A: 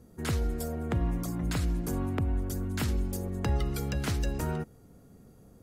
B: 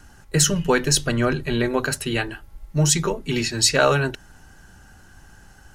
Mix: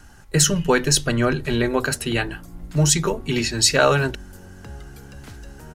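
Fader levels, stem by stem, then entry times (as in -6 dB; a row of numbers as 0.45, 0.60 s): -10.0, +1.0 dB; 1.20, 0.00 s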